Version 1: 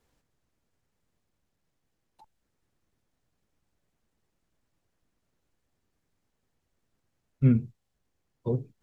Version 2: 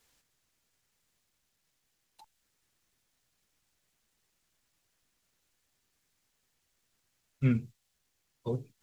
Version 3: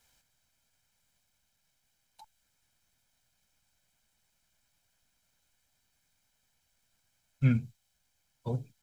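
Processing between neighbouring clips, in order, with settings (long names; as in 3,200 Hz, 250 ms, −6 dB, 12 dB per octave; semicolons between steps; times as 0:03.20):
tilt shelving filter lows −8 dB, about 1,300 Hz; level +2 dB
comb filter 1.3 ms, depth 55%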